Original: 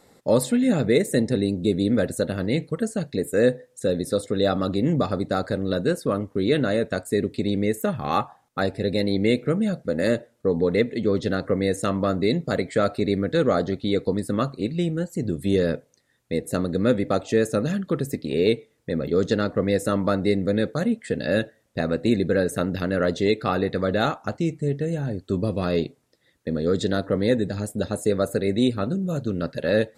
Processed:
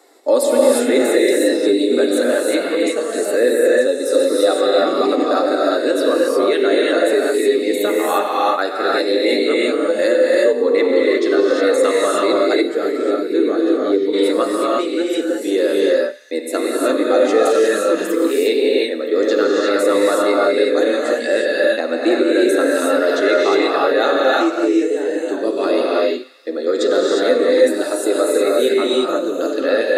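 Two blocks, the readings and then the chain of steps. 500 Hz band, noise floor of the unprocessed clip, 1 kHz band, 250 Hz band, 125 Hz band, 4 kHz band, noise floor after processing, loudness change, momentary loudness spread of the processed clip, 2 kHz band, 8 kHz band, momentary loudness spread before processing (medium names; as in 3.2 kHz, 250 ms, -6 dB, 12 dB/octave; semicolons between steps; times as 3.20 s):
+10.0 dB, -64 dBFS, +9.5 dB, +4.5 dB, under -20 dB, +9.5 dB, -24 dBFS, +8.0 dB, 5 LU, +10.0 dB, +10.0 dB, 6 LU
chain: elliptic high-pass 300 Hz, stop band 50 dB; on a send: feedback echo behind a high-pass 92 ms, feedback 68%, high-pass 1.6 kHz, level -17 dB; on the sum: flange 0.18 Hz, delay 2.6 ms, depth 7.8 ms, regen +49%; gated-style reverb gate 380 ms rising, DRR -4 dB; time-frequency box 12.62–14.14 s, 490–10000 Hz -10 dB; in parallel at +2 dB: peak limiter -17.5 dBFS, peak gain reduction 10 dB; on the sum: trim +3 dB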